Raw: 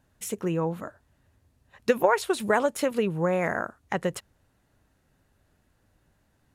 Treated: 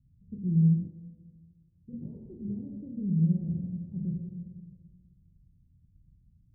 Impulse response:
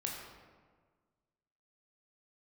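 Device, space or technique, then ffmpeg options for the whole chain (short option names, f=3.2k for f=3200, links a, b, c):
club heard from the street: -filter_complex "[0:a]alimiter=limit=-18.5dB:level=0:latency=1:release=11,lowpass=f=180:w=0.5412,lowpass=f=180:w=1.3066[a];[1:a]atrim=start_sample=2205[b];[a][b]afir=irnorm=-1:irlink=0,asettb=1/sr,asplit=3[c][d][e];[c]atrim=end=0.874[f];[d]atrim=start=0.87:end=1.93,asetpts=PTS-STARTPTS,afade=t=in:d=0.004:c=qsin,afade=t=out:st=1.056:d=0.004:c=qsin,lowshelf=f=490:g=-9[g];[e]atrim=start=1.926[h];[f][g]acrossfade=d=0.004:c1=hsin:c2=qsin[i];[i][h]acrossfade=d=0.004:c1=qsin:c2=hsin,volume=5.5dB"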